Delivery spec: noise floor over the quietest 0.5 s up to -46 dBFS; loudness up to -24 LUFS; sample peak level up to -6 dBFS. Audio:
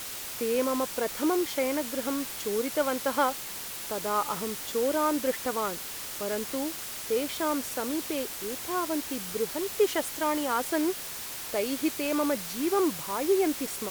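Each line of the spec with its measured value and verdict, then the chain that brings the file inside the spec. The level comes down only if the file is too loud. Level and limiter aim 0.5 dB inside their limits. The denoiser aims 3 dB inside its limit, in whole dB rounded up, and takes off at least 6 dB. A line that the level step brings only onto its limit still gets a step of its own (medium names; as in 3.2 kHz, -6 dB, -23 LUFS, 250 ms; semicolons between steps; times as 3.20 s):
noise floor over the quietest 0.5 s -38 dBFS: fail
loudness -29.0 LUFS: pass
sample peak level -12.5 dBFS: pass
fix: noise reduction 11 dB, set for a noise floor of -38 dBFS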